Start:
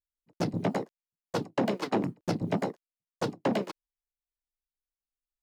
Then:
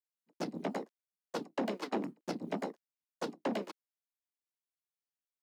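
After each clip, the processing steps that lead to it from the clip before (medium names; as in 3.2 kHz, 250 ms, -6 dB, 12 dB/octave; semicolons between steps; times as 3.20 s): Chebyshev high-pass 220 Hz, order 3; trim -6 dB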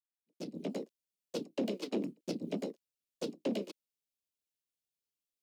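fade-in on the opening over 0.82 s; high-order bell 1.2 kHz -14 dB; trim +1.5 dB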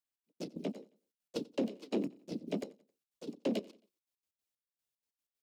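trance gate "xx.x.x.xx..." 188 bpm -12 dB; feedback delay 89 ms, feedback 42%, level -23 dB; trim +1 dB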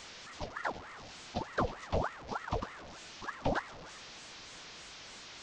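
one-bit delta coder 32 kbps, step -44 dBFS; ring modulator with a swept carrier 940 Hz, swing 75%, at 3.3 Hz; trim +4.5 dB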